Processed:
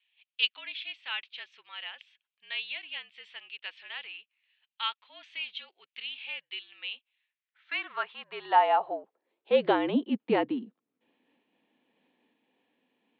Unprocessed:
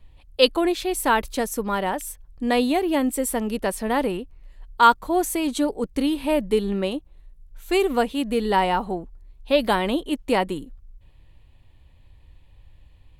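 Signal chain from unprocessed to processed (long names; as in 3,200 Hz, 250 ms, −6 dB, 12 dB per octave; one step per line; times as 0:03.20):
single-sideband voice off tune −53 Hz 220–3,600 Hz
high-pass filter sweep 2,700 Hz → 260 Hz, 0:07.10–0:09.94
amplitude modulation by smooth noise, depth 50%
level −4.5 dB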